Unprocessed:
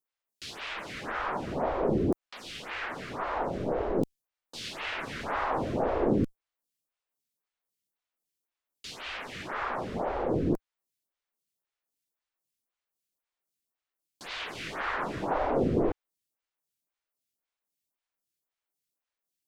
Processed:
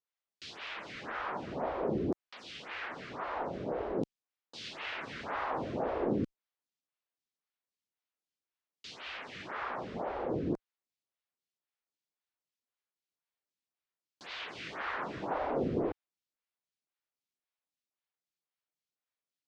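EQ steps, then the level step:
high-pass filter 100 Hz 6 dB per octave
high-frequency loss of the air 150 metres
high-shelf EQ 3,600 Hz +8.5 dB
−5.0 dB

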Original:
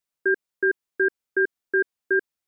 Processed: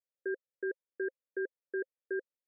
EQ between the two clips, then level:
formant filter e
spectral tilt −5 dB per octave
low-shelf EQ 220 Hz −10 dB
−2.0 dB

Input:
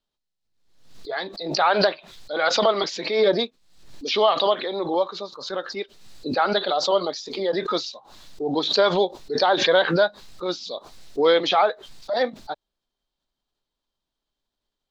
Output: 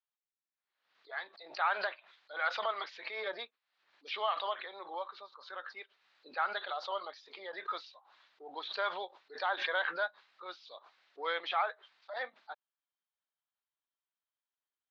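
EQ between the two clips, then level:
high-pass filter 1,400 Hz 12 dB per octave
low-pass filter 2,000 Hz 12 dB per octave
high-frequency loss of the air 72 metres
−4.0 dB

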